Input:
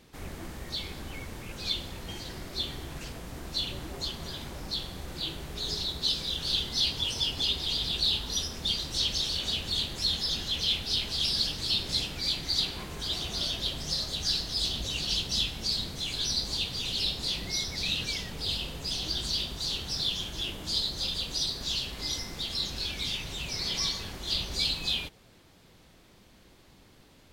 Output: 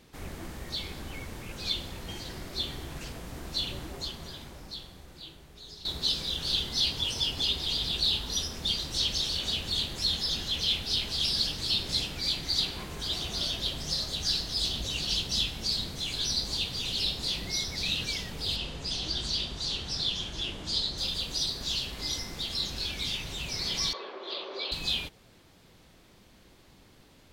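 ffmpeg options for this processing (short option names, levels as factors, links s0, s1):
-filter_complex "[0:a]asettb=1/sr,asplit=3[s0][s1][s2];[s0]atrim=end=18.564[s3];[s1]atrim=start=18.56:end=20.98,asetpts=PTS-STARTPTS,afade=t=in:d=0.004:c=qsin,afade=t=out:st=2.416:d=0.004:c=qsin,lowpass=7600[s4];[s2]atrim=start=20.976[s5];[s3][s4]acrossfade=d=0.004:c1=hsin:c2=qsin[s6];[s6][s5]acrossfade=d=0.004:c1=qsin:c2=hsin,asettb=1/sr,asplit=3[s7][s8][s9];[s7]atrim=end=23.934[s10];[s8]atrim=start=23.93:end=24.72,asetpts=PTS-STARTPTS,afade=t=in:d=0.004:c=qsin,afade=t=out:st=0.786:d=0.004:c=qsin,highpass=f=350:w=0.5412,highpass=f=350:w=1.3066,equalizer=f=390:t=q:w=4:g=9,equalizer=f=560:t=q:w=4:g=8,equalizer=f=1100:t=q:w=4:g=8,equalizer=f=1900:t=q:w=4:g=-4,equalizer=f=2900:t=q:w=4:g=-5,lowpass=f=3400:w=0.5412,lowpass=f=3400:w=1.3066[s11];[s9]atrim=start=24.716[s12];[s10][s11]acrossfade=d=0.004:c1=hsin:c2=qsin[s13];[s13][s12]acrossfade=d=0.004:c1=qsin:c2=hsin,asplit=2[s14][s15];[s14]atrim=end=5.85,asetpts=PTS-STARTPTS,afade=t=out:st=3.75:d=2.1:c=qua:silence=0.199526[s16];[s15]atrim=start=5.85,asetpts=PTS-STARTPTS,afade=t=in:d=0.004:c=hsin:silence=0.199526[s17];[s16][s17]concat=n=2:v=0:a=1"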